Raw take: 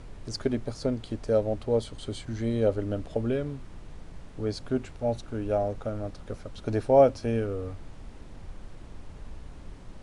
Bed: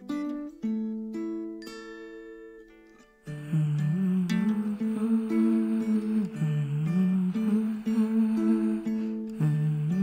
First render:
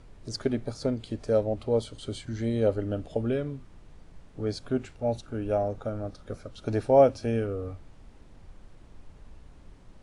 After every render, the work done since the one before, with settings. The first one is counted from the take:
noise reduction from a noise print 7 dB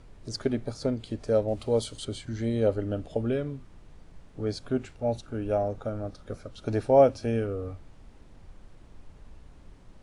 0:01.48–0:02.05: high-shelf EQ 3,500 Hz +10 dB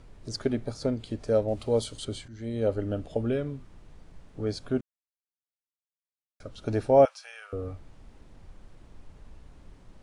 0:02.28–0:02.80: fade in, from −14 dB
0:04.81–0:06.40: silence
0:07.05–0:07.53: inverse Chebyshev high-pass filter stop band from 290 Hz, stop band 60 dB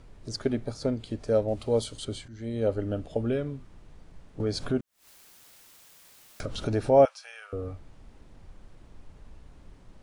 0:04.40–0:07.04: upward compression, threshold −22 dBFS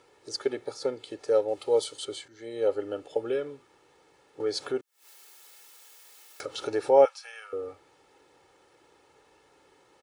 high-pass filter 380 Hz 12 dB per octave
comb filter 2.3 ms, depth 68%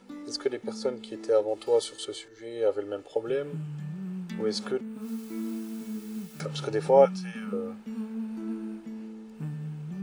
mix in bed −10 dB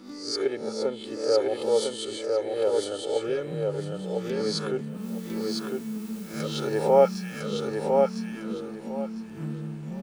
peak hold with a rise ahead of every peak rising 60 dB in 0.51 s
on a send: repeating echo 1,004 ms, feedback 23%, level −3.5 dB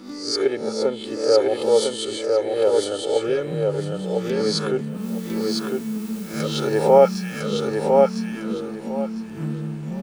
level +6 dB
brickwall limiter −3 dBFS, peak gain reduction 2 dB

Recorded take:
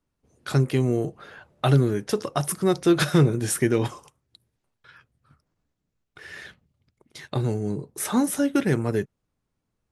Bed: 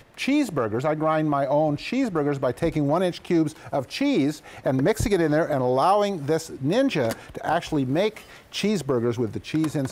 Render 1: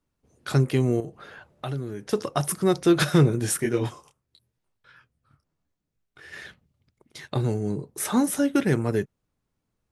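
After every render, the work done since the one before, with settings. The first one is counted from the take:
0:01.00–0:02.13: downward compressor 2 to 1, threshold −37 dBFS
0:03.57–0:06.33: micro pitch shift up and down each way 29 cents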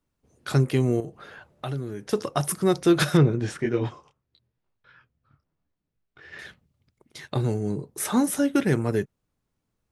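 0:03.17–0:06.39: high-frequency loss of the air 150 metres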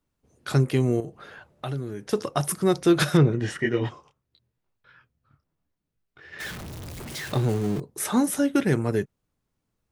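0:03.32–0:03.89: hollow resonant body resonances 1,900/2,900 Hz, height 15 dB, ringing for 30 ms
0:06.40–0:07.80: converter with a step at zero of −31.5 dBFS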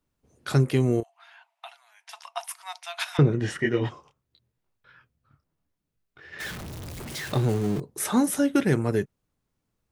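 0:01.03–0:03.19: Chebyshev high-pass with heavy ripple 660 Hz, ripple 9 dB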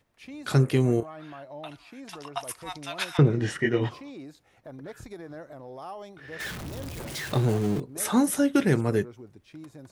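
mix in bed −20.5 dB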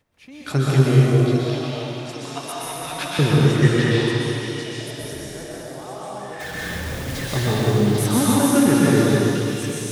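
echo through a band-pass that steps 795 ms, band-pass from 3,800 Hz, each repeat 0.7 octaves, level 0 dB
dense smooth reverb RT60 3.2 s, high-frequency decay 0.9×, pre-delay 110 ms, DRR −7 dB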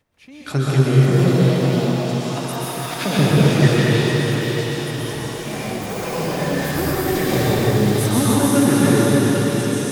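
on a send: feedback delay with all-pass diffusion 555 ms, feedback 46%, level −5.5 dB
on the sum: delay with pitch and tempo change per echo 668 ms, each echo +5 semitones, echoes 2, each echo −6 dB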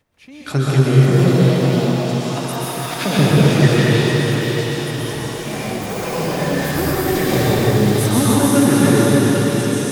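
level +2 dB
brickwall limiter −1 dBFS, peak gain reduction 1.5 dB

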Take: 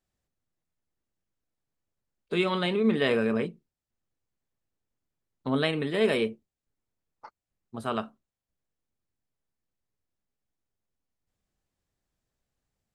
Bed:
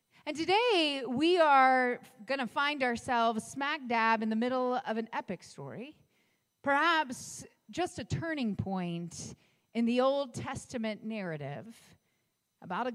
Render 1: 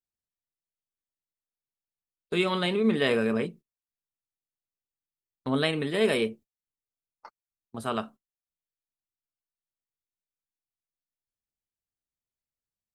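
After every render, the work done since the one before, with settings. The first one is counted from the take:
noise gate −46 dBFS, range −18 dB
high-shelf EQ 6,300 Hz +8.5 dB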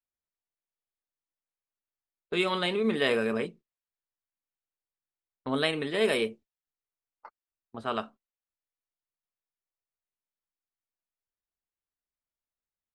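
low-pass that shuts in the quiet parts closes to 2,100 Hz, open at −21.5 dBFS
parametric band 140 Hz −6.5 dB 2 octaves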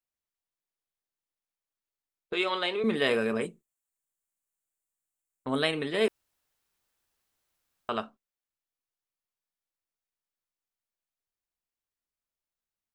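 0:02.33–0:02.84: three-way crossover with the lows and the highs turned down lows −24 dB, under 290 Hz, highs −16 dB, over 7,600 Hz
0:03.41–0:05.56: high shelf with overshoot 6,200 Hz +7 dB, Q 3
0:06.08–0:07.89: fill with room tone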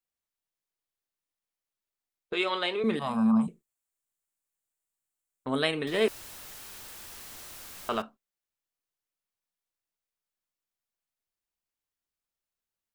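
0:02.99–0:03.48: drawn EQ curve 120 Hz 0 dB, 220 Hz +13 dB, 310 Hz −30 dB, 500 Hz −18 dB, 770 Hz +7 dB, 1,100 Hz +9 dB, 1,800 Hz −23 dB, 3,700 Hz −12 dB, 8,200 Hz −7 dB
0:05.87–0:08.02: converter with a step at zero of −39 dBFS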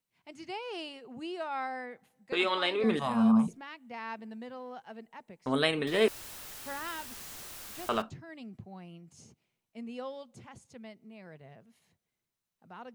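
mix in bed −12.5 dB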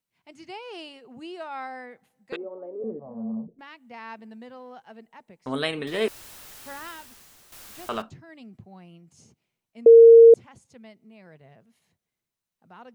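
0:02.36–0:03.59: transistor ladder low-pass 600 Hz, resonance 55%
0:06.84–0:07.52: fade out quadratic, to −10 dB
0:09.86–0:10.34: beep over 460 Hz −6.5 dBFS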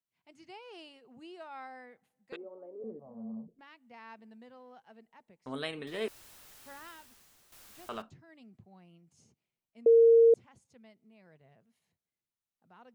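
level −10 dB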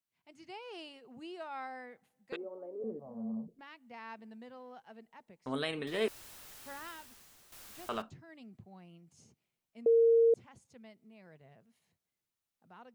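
brickwall limiter −24 dBFS, peak gain reduction 7.5 dB
automatic gain control gain up to 3 dB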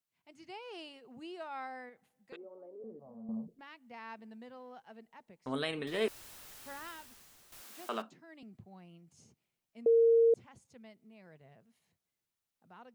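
0:01.89–0:03.29: downward compressor 1.5 to 1, threshold −59 dBFS
0:07.61–0:08.43: Butterworth high-pass 190 Hz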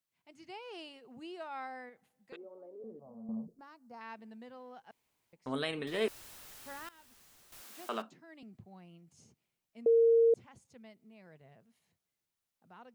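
0:03.00–0:04.01: flat-topped bell 2,600 Hz −14 dB 1.2 octaves
0:04.91–0:05.33: fill with room tone
0:06.89–0:07.62: fade in equal-power, from −18 dB

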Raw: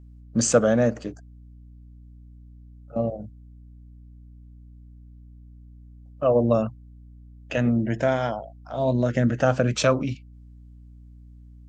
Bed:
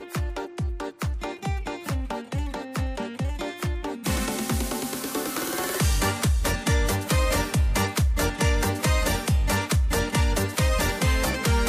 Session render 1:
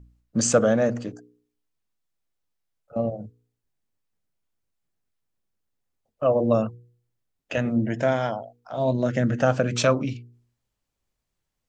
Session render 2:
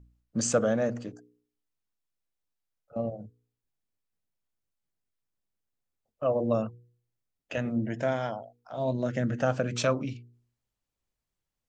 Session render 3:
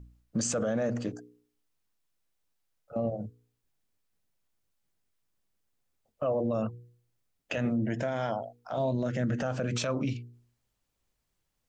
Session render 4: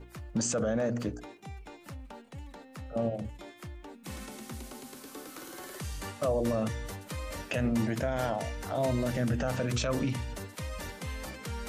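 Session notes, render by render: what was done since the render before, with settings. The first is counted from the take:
hum removal 60 Hz, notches 8
level −6 dB
in parallel at +1 dB: downward compressor, threshold −34 dBFS, peak gain reduction 14 dB; on the sum: brickwall limiter −21.5 dBFS, peak gain reduction 10.5 dB
mix in bed −16 dB

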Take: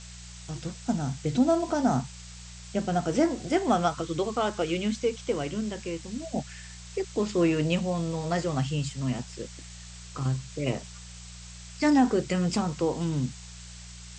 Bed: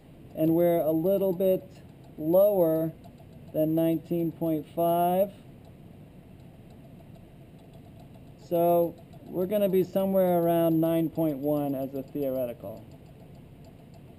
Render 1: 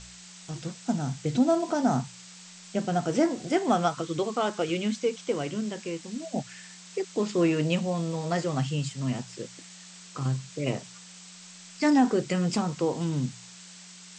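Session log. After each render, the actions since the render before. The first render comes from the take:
hum removal 60 Hz, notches 2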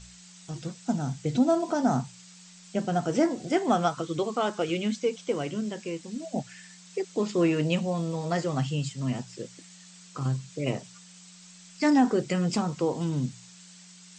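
broadband denoise 6 dB, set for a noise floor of −48 dBFS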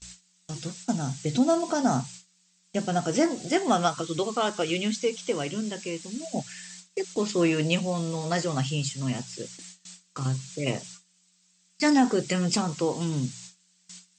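noise gate with hold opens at −38 dBFS
high-shelf EQ 2,400 Hz +8.5 dB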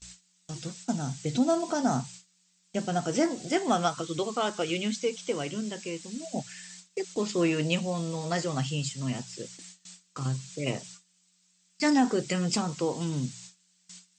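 level −2.5 dB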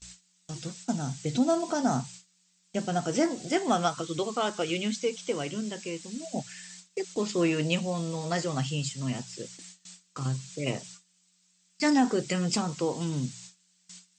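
no processing that can be heard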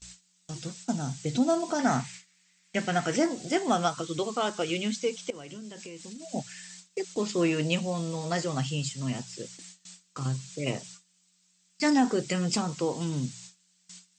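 0:01.79–0:03.16: parametric band 2,000 Hz +14.5 dB 0.93 octaves
0:05.30–0:06.33: downward compressor 12 to 1, threshold −38 dBFS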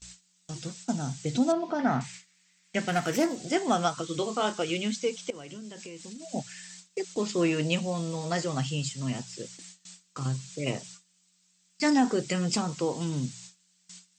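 0:01.52–0:02.01: high-frequency loss of the air 250 metres
0:02.88–0:03.36: phase distortion by the signal itself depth 0.091 ms
0:04.06–0:04.54: double-tracking delay 28 ms −9 dB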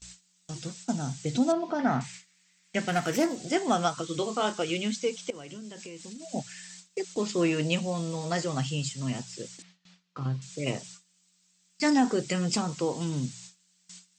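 0:09.62–0:10.42: high-frequency loss of the air 250 metres

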